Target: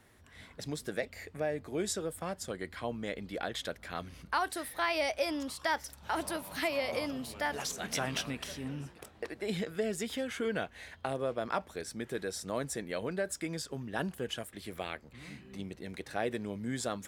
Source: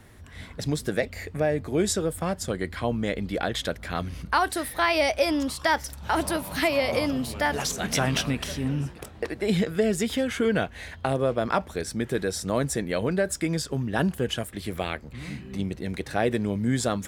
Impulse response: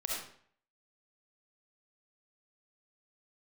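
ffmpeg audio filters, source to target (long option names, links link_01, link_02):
-af "lowshelf=frequency=190:gain=-9,volume=-8dB"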